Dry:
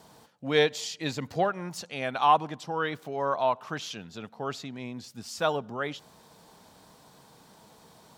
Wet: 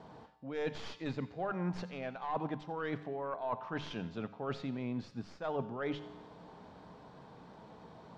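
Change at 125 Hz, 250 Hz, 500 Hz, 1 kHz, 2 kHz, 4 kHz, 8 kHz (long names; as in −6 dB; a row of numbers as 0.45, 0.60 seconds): −3.0 dB, −2.5 dB, −9.5 dB, −13.0 dB, −11.5 dB, −15.0 dB, below −20 dB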